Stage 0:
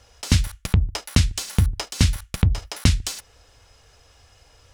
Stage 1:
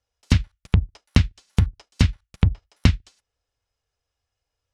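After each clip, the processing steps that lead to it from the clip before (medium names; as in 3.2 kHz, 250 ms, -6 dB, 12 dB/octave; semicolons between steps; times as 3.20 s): low-pass that closes with the level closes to 2.7 kHz, closed at -14 dBFS; upward expansion 2.5:1, over -33 dBFS; trim +3 dB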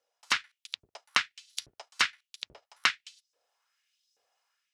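level rider gain up to 5.5 dB; LFO high-pass saw up 1.2 Hz 430–5800 Hz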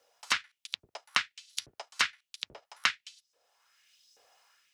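three bands compressed up and down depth 40%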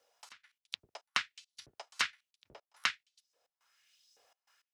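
trance gate "xx.x.xx.xx.xxx" 104 bpm -24 dB; trim -4.5 dB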